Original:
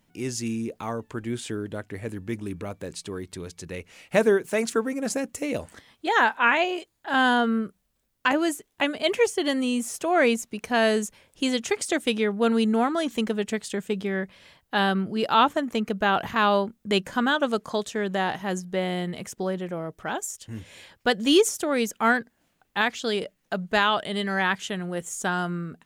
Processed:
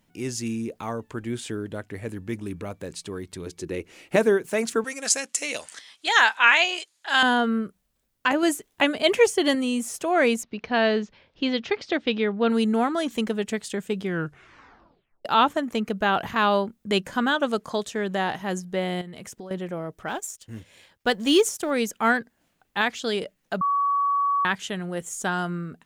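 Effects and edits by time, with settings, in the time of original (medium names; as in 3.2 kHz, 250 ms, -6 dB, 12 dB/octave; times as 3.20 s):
3.46–4.16 s: peaking EQ 340 Hz +13.5 dB 0.61 oct
4.84–7.23 s: frequency weighting ITU-R 468
8.43–9.55 s: gain +3.5 dB
10.43–12.50 s: steep low-pass 4.8 kHz
14.02 s: tape stop 1.23 s
19.01–19.51 s: compression 12:1, threshold -35 dBFS
20.08–21.71 s: companding laws mixed up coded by A
23.61–24.45 s: bleep 1.13 kHz -19.5 dBFS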